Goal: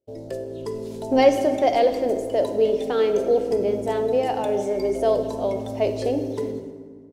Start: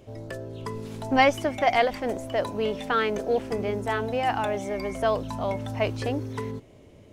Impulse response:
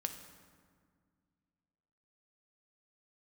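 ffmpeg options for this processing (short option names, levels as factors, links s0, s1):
-filter_complex "[0:a]agate=range=0.0178:threshold=0.00501:ratio=16:detection=peak,firequalizer=gain_entry='entry(160,0);entry(390,13);entry(1200,-7);entry(4400,5)':delay=0.05:min_phase=1[s0];[1:a]atrim=start_sample=2205[s1];[s0][s1]afir=irnorm=-1:irlink=0,volume=0.75"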